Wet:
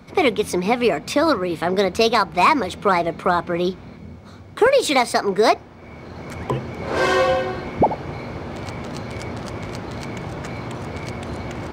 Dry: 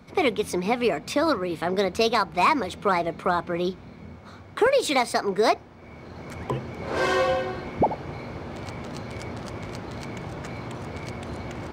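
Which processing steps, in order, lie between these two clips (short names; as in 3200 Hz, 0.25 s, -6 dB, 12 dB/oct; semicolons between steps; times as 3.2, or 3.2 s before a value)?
3.97–4.62 bell 1400 Hz -6 dB 2.8 oct; gain +5 dB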